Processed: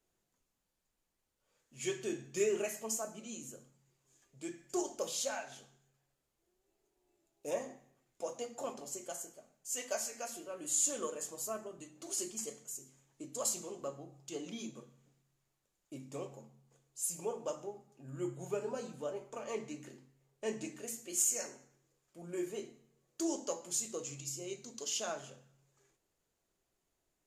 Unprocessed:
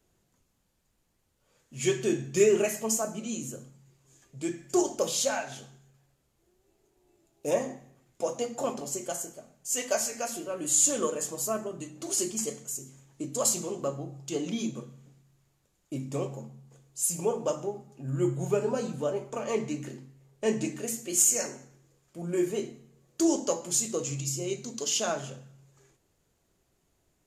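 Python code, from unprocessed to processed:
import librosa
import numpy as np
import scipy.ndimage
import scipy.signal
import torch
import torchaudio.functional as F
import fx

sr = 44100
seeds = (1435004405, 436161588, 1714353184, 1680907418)

y = fx.peak_eq(x, sr, hz=93.0, db=-8.0, octaves=2.8)
y = y * 10.0 ** (-8.5 / 20.0)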